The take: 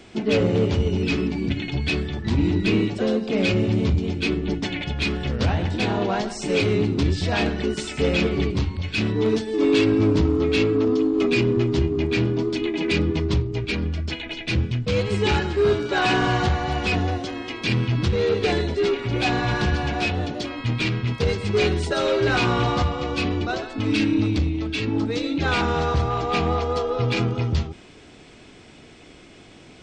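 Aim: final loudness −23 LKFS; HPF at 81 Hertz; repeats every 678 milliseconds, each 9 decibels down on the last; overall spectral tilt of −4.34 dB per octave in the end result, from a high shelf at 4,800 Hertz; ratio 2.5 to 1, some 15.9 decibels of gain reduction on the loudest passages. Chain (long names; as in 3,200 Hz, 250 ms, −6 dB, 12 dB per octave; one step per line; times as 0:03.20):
high-pass filter 81 Hz
high-shelf EQ 4,800 Hz +8 dB
downward compressor 2.5 to 1, threshold −41 dBFS
repeating echo 678 ms, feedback 35%, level −9 dB
level +13.5 dB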